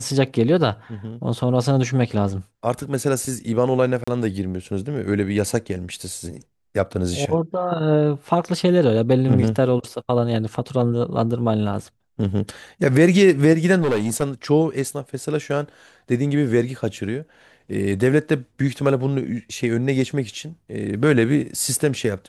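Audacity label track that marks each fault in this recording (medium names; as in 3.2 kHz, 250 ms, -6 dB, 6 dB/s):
4.040000	4.080000	dropout 35 ms
13.810000	14.230000	clipped -16.5 dBFS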